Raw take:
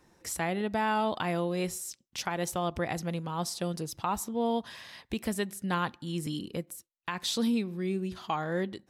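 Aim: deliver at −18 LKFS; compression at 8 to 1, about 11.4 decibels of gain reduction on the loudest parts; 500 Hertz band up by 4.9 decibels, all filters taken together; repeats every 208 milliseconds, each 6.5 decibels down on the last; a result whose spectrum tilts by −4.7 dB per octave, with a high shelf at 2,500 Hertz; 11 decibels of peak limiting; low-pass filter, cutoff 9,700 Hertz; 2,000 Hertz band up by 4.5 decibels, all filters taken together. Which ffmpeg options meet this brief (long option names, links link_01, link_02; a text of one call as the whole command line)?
ffmpeg -i in.wav -af "lowpass=9700,equalizer=frequency=500:width_type=o:gain=6,equalizer=frequency=2000:width_type=o:gain=7.5,highshelf=frequency=2500:gain=-5,acompressor=threshold=-34dB:ratio=8,alimiter=level_in=6dB:limit=-24dB:level=0:latency=1,volume=-6dB,aecho=1:1:208|416|624|832|1040|1248:0.473|0.222|0.105|0.0491|0.0231|0.0109,volume=21.5dB" out.wav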